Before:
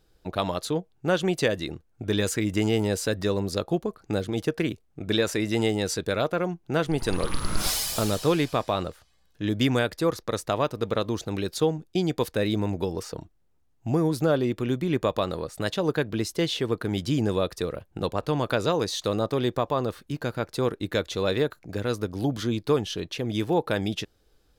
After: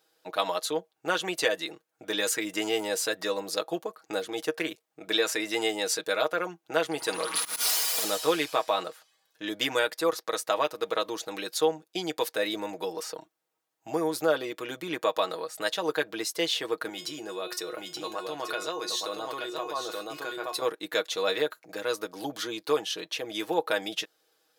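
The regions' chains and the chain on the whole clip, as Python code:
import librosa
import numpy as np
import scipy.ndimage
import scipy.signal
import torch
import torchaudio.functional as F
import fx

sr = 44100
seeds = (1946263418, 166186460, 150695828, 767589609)

y = fx.chain(x, sr, fx.lower_of_two(delay_ms=4.2),
    fx.auto_swell(attack_ms=169.0),
    fx.band_squash(depth_pct=100), at=(7.35, 8.04))
y = fx.chain(y, sr, fx.comb_fb(f0_hz=360.0, decay_s=0.21, harmonics='all', damping=0.0, mix_pct=80),
    fx.echo_single(ms=877, db=-6.5),
    fx.env_flatten(amount_pct=70), at=(16.89, 20.62))
y = scipy.signal.sosfilt(scipy.signal.butter(2, 560.0, 'highpass', fs=sr, output='sos'), y)
y = fx.high_shelf(y, sr, hz=12000.0, db=5.0)
y = y + 0.65 * np.pad(y, (int(6.3 * sr / 1000.0), 0))[:len(y)]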